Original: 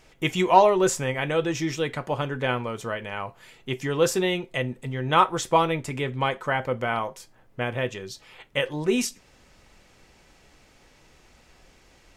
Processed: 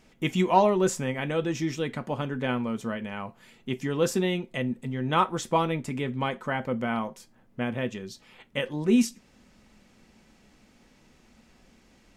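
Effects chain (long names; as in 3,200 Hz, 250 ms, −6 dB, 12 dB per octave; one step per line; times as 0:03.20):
parametric band 220 Hz +14 dB 0.61 octaves
level −5 dB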